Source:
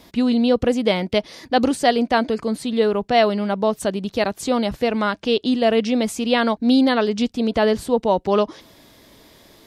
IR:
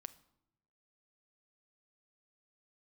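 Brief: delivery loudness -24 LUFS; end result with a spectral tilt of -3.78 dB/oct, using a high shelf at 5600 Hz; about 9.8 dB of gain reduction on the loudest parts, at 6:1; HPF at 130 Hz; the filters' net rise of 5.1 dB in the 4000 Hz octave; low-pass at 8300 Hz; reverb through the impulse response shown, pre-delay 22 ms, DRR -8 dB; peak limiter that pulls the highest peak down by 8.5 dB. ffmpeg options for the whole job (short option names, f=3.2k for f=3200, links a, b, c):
-filter_complex "[0:a]highpass=130,lowpass=8.3k,equalizer=f=4k:t=o:g=4,highshelf=f=5.6k:g=7.5,acompressor=threshold=-22dB:ratio=6,alimiter=limit=-20.5dB:level=0:latency=1,asplit=2[a][b];[1:a]atrim=start_sample=2205,adelay=22[c];[b][c]afir=irnorm=-1:irlink=0,volume=13.5dB[d];[a][d]amix=inputs=2:normalize=0,volume=-3dB"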